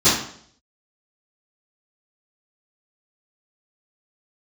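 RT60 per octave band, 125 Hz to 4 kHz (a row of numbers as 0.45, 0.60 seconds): 0.65, 0.65, 0.65, 0.55, 0.55, 0.55 seconds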